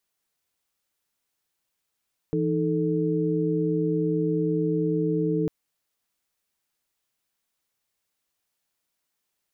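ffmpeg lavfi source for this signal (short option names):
-f lavfi -i "aevalsrc='0.0501*(sin(2*PI*164.81*t)+sin(2*PI*311.13*t)+sin(2*PI*440*t))':d=3.15:s=44100"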